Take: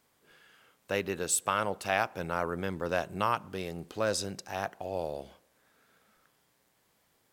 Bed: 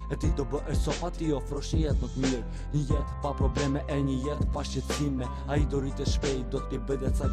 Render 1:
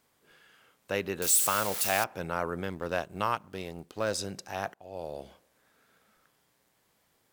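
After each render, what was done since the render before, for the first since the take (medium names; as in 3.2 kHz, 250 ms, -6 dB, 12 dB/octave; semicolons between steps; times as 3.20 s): 1.22–2.04 s: zero-crossing glitches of -21.5 dBFS; 2.64–4.19 s: companding laws mixed up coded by A; 4.74–5.24 s: fade in, from -19 dB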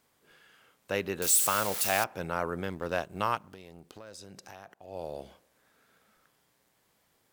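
3.40–4.88 s: compression 8:1, threshold -43 dBFS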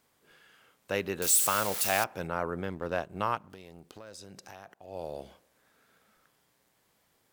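2.27–3.50 s: treble shelf 3 kHz -7.5 dB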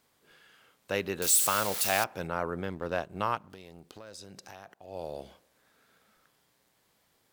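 peaking EQ 4.1 kHz +2.5 dB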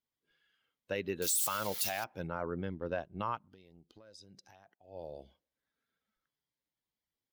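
expander on every frequency bin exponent 1.5; peak limiter -23 dBFS, peak gain reduction 10 dB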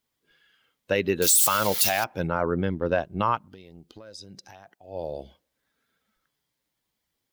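trim +12 dB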